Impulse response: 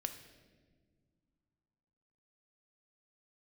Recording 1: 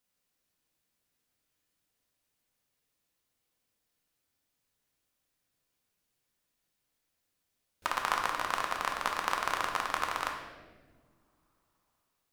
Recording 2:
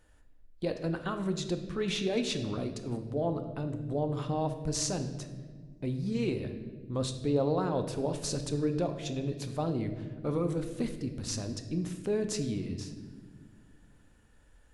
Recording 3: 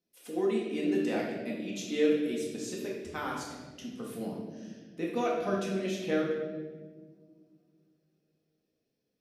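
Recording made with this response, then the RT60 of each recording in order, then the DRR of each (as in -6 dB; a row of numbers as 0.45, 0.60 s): 2; 1.7 s, not exponential, 1.6 s; 1.0, 6.5, -4.0 dB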